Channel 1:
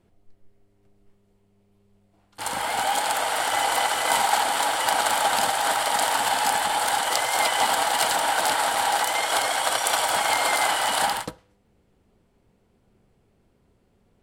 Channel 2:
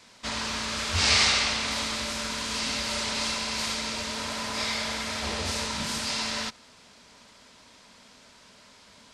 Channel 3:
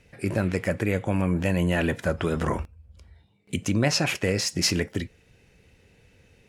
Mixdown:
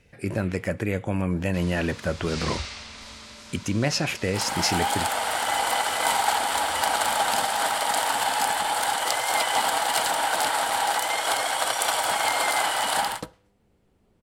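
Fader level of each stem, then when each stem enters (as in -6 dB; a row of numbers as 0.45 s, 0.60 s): -1.5 dB, -13.0 dB, -1.5 dB; 1.95 s, 1.30 s, 0.00 s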